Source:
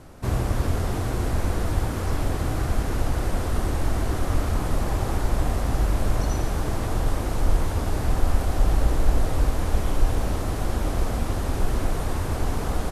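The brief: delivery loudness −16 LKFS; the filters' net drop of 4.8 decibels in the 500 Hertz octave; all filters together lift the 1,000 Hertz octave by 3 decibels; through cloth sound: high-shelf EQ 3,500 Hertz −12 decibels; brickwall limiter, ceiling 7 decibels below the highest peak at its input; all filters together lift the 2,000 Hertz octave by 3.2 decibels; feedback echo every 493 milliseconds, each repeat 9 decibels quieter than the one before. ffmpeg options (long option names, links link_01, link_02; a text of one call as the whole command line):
ffmpeg -i in.wav -af "equalizer=frequency=500:width_type=o:gain=-8.5,equalizer=frequency=1000:width_type=o:gain=6.5,equalizer=frequency=2000:width_type=o:gain=5.5,alimiter=limit=-13.5dB:level=0:latency=1,highshelf=frequency=3500:gain=-12,aecho=1:1:493|986|1479|1972:0.355|0.124|0.0435|0.0152,volume=11dB" out.wav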